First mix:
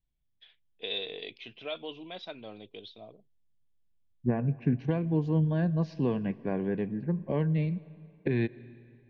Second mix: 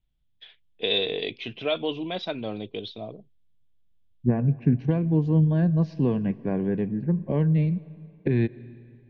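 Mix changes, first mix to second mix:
first voice +9.0 dB
master: add low-shelf EQ 380 Hz +7.5 dB

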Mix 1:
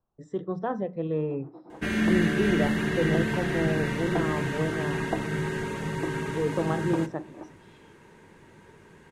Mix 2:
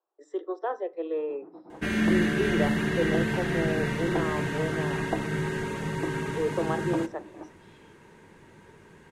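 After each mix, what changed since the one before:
speech: add Butterworth high-pass 320 Hz 72 dB per octave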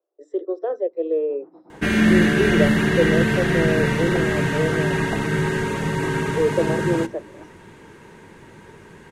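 speech: add low shelf with overshoot 710 Hz +7 dB, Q 3
second sound +11.0 dB
reverb: off

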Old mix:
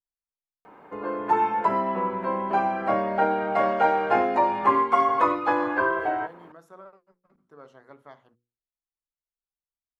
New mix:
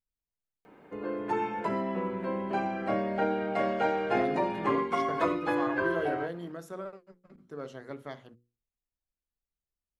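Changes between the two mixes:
speech +12.0 dB
master: add parametric band 1,000 Hz −11.5 dB 1.4 octaves

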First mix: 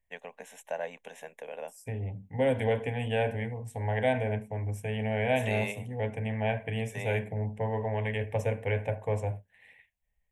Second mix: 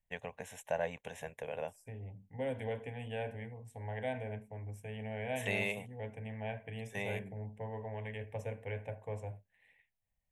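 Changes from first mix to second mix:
first voice: remove high-pass filter 210 Hz 24 dB per octave
second voice −11.0 dB

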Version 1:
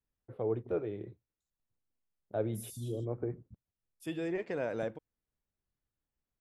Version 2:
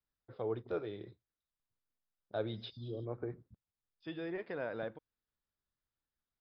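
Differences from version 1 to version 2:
first voice: remove high-frequency loss of the air 480 metres
master: add Chebyshev low-pass with heavy ripple 5,100 Hz, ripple 6 dB

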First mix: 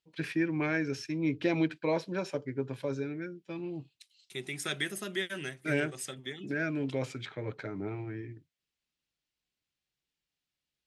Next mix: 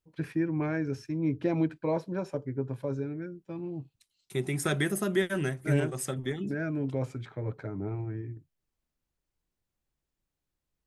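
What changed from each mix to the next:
second voice +9.0 dB
master: remove meter weighting curve D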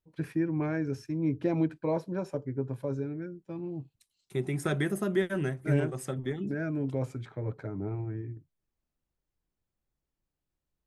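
first voice: add high-shelf EQ 5,500 Hz +12 dB
master: add high-shelf EQ 2,200 Hz −8.5 dB

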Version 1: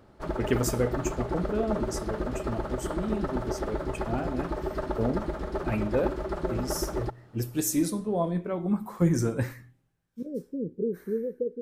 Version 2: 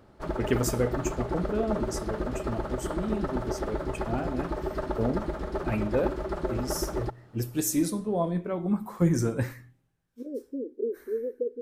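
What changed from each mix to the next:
second voice: add linear-phase brick-wall high-pass 240 Hz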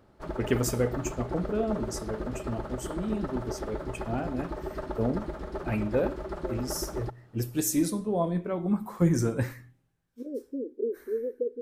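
background −4.0 dB

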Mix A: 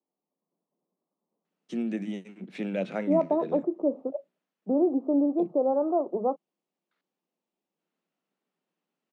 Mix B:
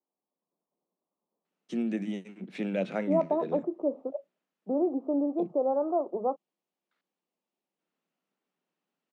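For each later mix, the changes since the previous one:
second voice: add low-shelf EQ 330 Hz −8 dB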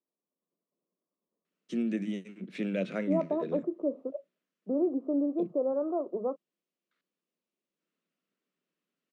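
master: add parametric band 820 Hz −13 dB 0.46 octaves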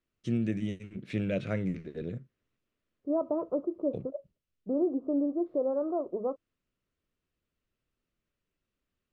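first voice: entry −1.45 s
master: remove Butterworth high-pass 160 Hz 72 dB per octave

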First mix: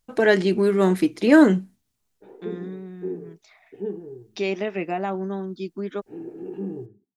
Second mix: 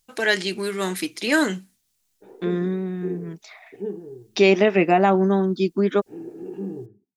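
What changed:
first voice: add tilt shelving filter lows −9.5 dB, about 1,400 Hz
second voice +10.0 dB

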